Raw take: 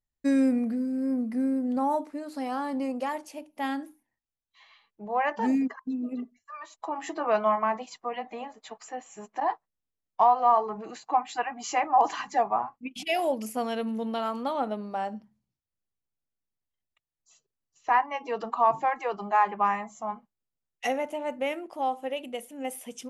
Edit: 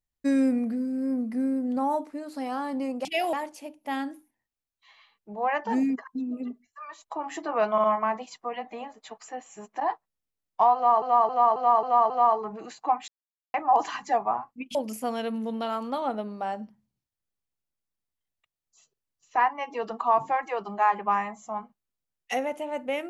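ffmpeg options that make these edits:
-filter_complex "[0:a]asplit=13[s0][s1][s2][s3][s4][s5][s6][s7][s8][s9][s10][s11][s12];[s0]atrim=end=3.052[s13];[s1]atrim=start=12.998:end=13.282[s14];[s2]atrim=start=3.048:end=7.502[s15];[s3]atrim=start=7.438:end=7.502[s16];[s4]atrim=start=7.438:end=10.622[s17];[s5]atrim=start=10.348:end=10.622[s18];[s6]atrim=start=10.348:end=10.622[s19];[s7]atrim=start=10.348:end=10.622[s20];[s8]atrim=start=10.348:end=10.622[s21];[s9]atrim=start=10.348:end=11.33,asetpts=PTS-STARTPTS,afade=t=out:st=0.978:d=0.004:c=hsin[s22];[s10]atrim=start=11.33:end=11.79,asetpts=PTS-STARTPTS,volume=0[s23];[s11]atrim=start=11.79:end=13.002,asetpts=PTS-STARTPTS,afade=t=in:d=0.004:c=hsin[s24];[s12]atrim=start=13.278[s25];[s13][s14]acrossfade=d=0.004:c1=hsin:c2=hsin[s26];[s26][s15]acrossfade=d=0.004:c1=hsin:c2=hsin[s27];[s27][s16]acrossfade=d=0.004:c1=hsin:c2=hsin[s28];[s28][s17]acrossfade=d=0.004:c1=hsin:c2=hsin[s29];[s29][s18]acrossfade=d=0.004:c1=hsin:c2=hsin[s30];[s30][s19]acrossfade=d=0.004:c1=hsin:c2=hsin[s31];[s31][s20]acrossfade=d=0.004:c1=hsin:c2=hsin[s32];[s32][s21]acrossfade=d=0.004:c1=hsin:c2=hsin[s33];[s22][s23][s24]concat=n=3:v=0:a=1[s34];[s33][s34]acrossfade=d=0.004:c1=hsin:c2=hsin[s35];[s35][s25]acrossfade=d=0.004:c1=hsin:c2=hsin"

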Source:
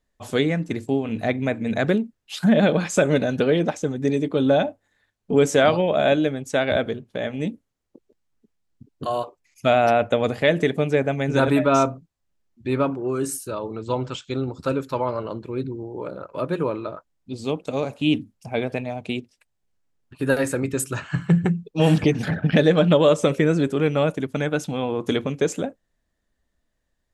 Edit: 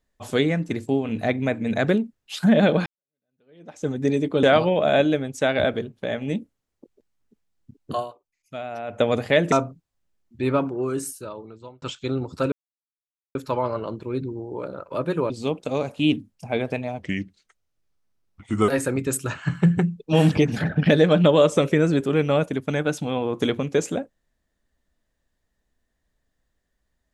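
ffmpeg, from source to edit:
-filter_complex "[0:a]asplit=11[s0][s1][s2][s3][s4][s5][s6][s7][s8][s9][s10];[s0]atrim=end=2.86,asetpts=PTS-STARTPTS,afade=t=out:st=2.856:d=0.004:c=hsin[s11];[s1]atrim=start=2.86:end=4.432,asetpts=PTS-STARTPTS,afade=t=in:d=1.01:c=exp[s12];[s2]atrim=start=5.548:end=9.55,asetpts=PTS-STARTPTS,afade=t=out:st=3.562:d=0.44:c=exp:silence=0.16788[s13];[s3]atrim=start=9.55:end=9.65,asetpts=PTS-STARTPTS,volume=0.168[s14];[s4]atrim=start=9.65:end=10.642,asetpts=PTS-STARTPTS,afade=t=in:d=0.44:c=exp:silence=0.16788[s15];[s5]atrim=start=11.778:end=14.08,asetpts=PTS-STARTPTS,afade=t=out:st=1.222:d=1.08[s16];[s6]atrim=start=14.08:end=14.78,asetpts=PTS-STARTPTS,afade=t=in:d=0.004:c=hsin,afade=t=out:st=0.696:d=0.004:c=hsin,apad=pad_dur=0.83[s17];[s7]atrim=start=14.78:end=16.732,asetpts=PTS-STARTPTS,afade=t=in:d=0.004:c=hsin[s18];[s8]atrim=start=17.318:end=19.024[s19];[s9]atrim=start=19.02:end=20.35,asetpts=PTS-STARTPTS,asetrate=34839,aresample=44100,atrim=end_sample=74244,asetpts=PTS-STARTPTS[s20];[s10]atrim=start=20.346[s21];[s11][s12]concat=n=2:v=0:a=1[s22];[s13][s14][s15]concat=n=3:v=0:a=1[s23];[s22][s23]acrossfade=d=0.004:c1=hsin:c2=hsin[s24];[s16][s17][s18]concat=n=3:v=0:a=1[s25];[s24][s25]acrossfade=d=0.004:c1=hsin:c2=hsin[s26];[s26][s19]acrossfade=d=0.004:c1=hsin:c2=hsin[s27];[s27][s20]acrossfade=d=0.004:c1=hsin:c2=hsin[s28];[s28][s21]acrossfade=d=0.004:c1=hsin:c2=hsin"

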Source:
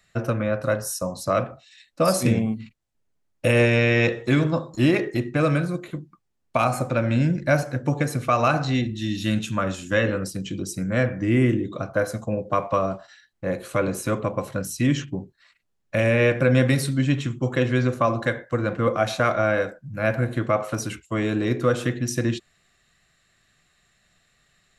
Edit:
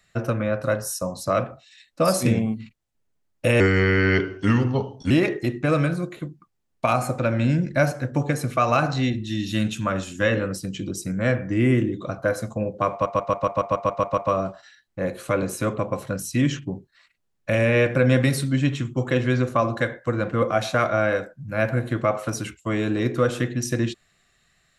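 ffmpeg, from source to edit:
-filter_complex "[0:a]asplit=12[s0][s1][s2][s3][s4][s5][s6][s7][s8][s9][s10][s11];[s0]atrim=end=3.604[s12];[s1]atrim=start=3.6:end=4.82,asetpts=PTS-STARTPTS,asetrate=35721,aresample=44100,atrim=end_sample=66422,asetpts=PTS-STARTPTS[s13];[s2]atrim=start=4.816:end=12.772[s14];[s3]atrim=start=12.628:end=12.772[s15];[s4]atrim=start=12.628:end=12.772[s16];[s5]atrim=start=12.628:end=12.772[s17];[s6]atrim=start=12.628:end=12.772[s18];[s7]atrim=start=12.628:end=12.772[s19];[s8]atrim=start=12.628:end=12.772[s20];[s9]atrim=start=12.628:end=12.772[s21];[s10]atrim=start=12.628:end=12.772[s22];[s11]atrim=start=12.628[s23];[s12][s13]acrossfade=d=0.004:c1=hsin:c2=hsin[s24];[s24][s14]acrossfade=d=0.004:c1=hsin:c2=hsin[s25];[s25][s15]acrossfade=d=0.004:c1=hsin:c2=hsin[s26];[s26][s16]acrossfade=d=0.004:c1=hsin:c2=hsin[s27];[s27][s17]acrossfade=d=0.004:c1=hsin:c2=hsin[s28];[s28][s18]acrossfade=d=0.004:c1=hsin:c2=hsin[s29];[s29][s19]acrossfade=d=0.004:c1=hsin:c2=hsin[s30];[s30][s20]acrossfade=d=0.004:c1=hsin:c2=hsin[s31];[s31][s21]acrossfade=d=0.004:c1=hsin:c2=hsin[s32];[s32][s22]acrossfade=d=0.004:c1=hsin:c2=hsin[s33];[s33][s23]acrossfade=d=0.004:c1=hsin:c2=hsin"

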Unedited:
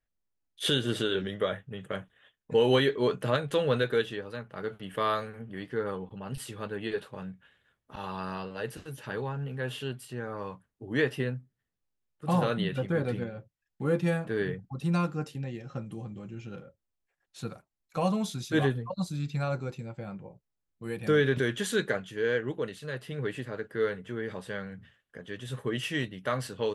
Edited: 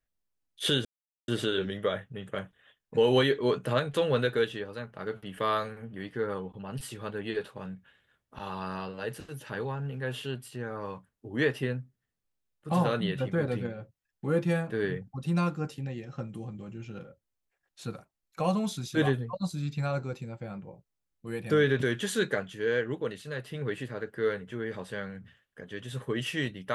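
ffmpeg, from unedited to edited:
-filter_complex "[0:a]asplit=2[s0][s1];[s0]atrim=end=0.85,asetpts=PTS-STARTPTS,afade=t=out:st=0.846:d=0.004:c=hsin,apad=pad_dur=0.43[s2];[s1]atrim=start=0.85,asetpts=PTS-STARTPTS,afade=t=in:d=0.004:c=hsin[s3];[s2][s3]concat=n=2:v=0:a=1"

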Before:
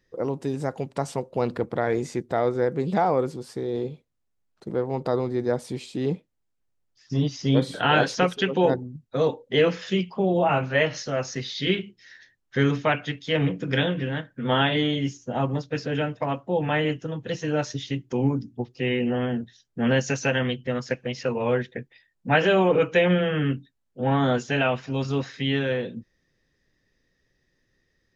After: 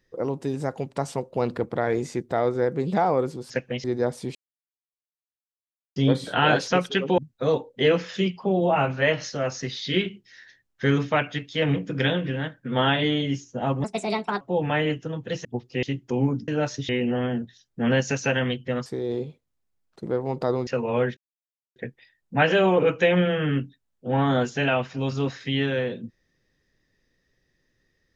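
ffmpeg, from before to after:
-filter_complex "[0:a]asplit=15[s0][s1][s2][s3][s4][s5][s6][s7][s8][s9][s10][s11][s12][s13][s14];[s0]atrim=end=3.502[s15];[s1]atrim=start=20.848:end=21.192[s16];[s2]atrim=start=5.308:end=5.82,asetpts=PTS-STARTPTS,afade=t=out:st=0.508:d=0.004:c=hsin[s17];[s3]atrim=start=5.82:end=7.43,asetpts=PTS-STARTPTS,volume=0[s18];[s4]atrim=start=7.43:end=8.652,asetpts=PTS-STARTPTS,afade=t=in:d=0.004:c=hsin[s19];[s5]atrim=start=8.908:end=15.574[s20];[s6]atrim=start=15.57:end=16.4,asetpts=PTS-STARTPTS,asetrate=64386,aresample=44100[s21];[s7]atrim=start=16.396:end=17.442[s22];[s8]atrim=start=18.498:end=18.882[s23];[s9]atrim=start=17.848:end=18.502[s24];[s10]atrim=start=17.438:end=17.852[s25];[s11]atrim=start=18.878:end=20.852[s26];[s12]atrim=start=3.498:end=5.312[s27];[s13]atrim=start=21.188:end=21.69,asetpts=PTS-STARTPTS,afade=t=out:st=0.498:d=0.004:c=hsin,apad=pad_dur=0.59[s28];[s14]atrim=start=21.69,asetpts=PTS-STARTPTS,afade=t=in:d=0.004:c=hsin[s29];[s15][s16]acrossfade=d=0.004:c1=hsin:c2=hsin[s30];[s17][s18][s19]concat=n=3:v=0:a=1[s31];[s30][s31]acrossfade=d=0.004:c1=hsin:c2=hsin[s32];[s32][s20]acrossfade=d=0.004:c1=hsin:c2=hsin[s33];[s33][s21]acrossfade=d=0.004:c1=hsin:c2=hsin[s34];[s34][s22]acrossfade=d=0.004:c1=hsin:c2=hsin[s35];[s35][s23]acrossfade=d=0.004:c1=hsin:c2=hsin[s36];[s36][s24]acrossfade=d=0.004:c1=hsin:c2=hsin[s37];[s37][s25]acrossfade=d=0.004:c1=hsin:c2=hsin[s38];[s38][s26]acrossfade=d=0.004:c1=hsin:c2=hsin[s39];[s39][s27]acrossfade=d=0.004:c1=hsin:c2=hsin[s40];[s28][s29]concat=n=2:v=0:a=1[s41];[s40][s41]acrossfade=d=0.004:c1=hsin:c2=hsin"

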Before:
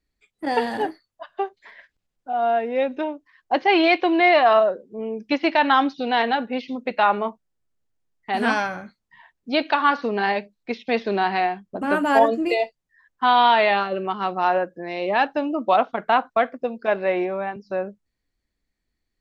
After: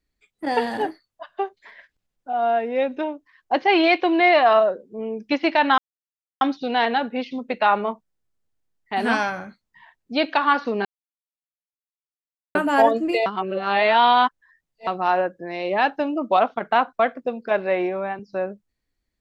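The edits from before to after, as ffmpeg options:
-filter_complex "[0:a]asplit=6[s0][s1][s2][s3][s4][s5];[s0]atrim=end=5.78,asetpts=PTS-STARTPTS,afade=t=out:st=5.776:d=0.004:c=hsin,apad=pad_dur=0.63[s6];[s1]atrim=start=5.78:end=10.22,asetpts=PTS-STARTPTS,afade=t=in:d=0.004:c=hsin,afade=t=out:st=4.436:d=0.004:c=hsin[s7];[s2]atrim=start=10.22:end=11.92,asetpts=PTS-STARTPTS,volume=0[s8];[s3]atrim=start=11.92:end=12.632,asetpts=PTS-STARTPTS,afade=t=in:d=0.004:c=hsin[s9];[s4]atrim=start=12.628:end=14.242,asetpts=PTS-STARTPTS,areverse[s10];[s5]atrim=start=14.238[s11];[s6][s7][s8][s9]concat=n=4:v=0:a=1[s12];[s12][s10]acrossfade=d=0.004:c1=hsin:c2=hsin[s13];[s13][s11]acrossfade=d=0.004:c1=hsin:c2=hsin"

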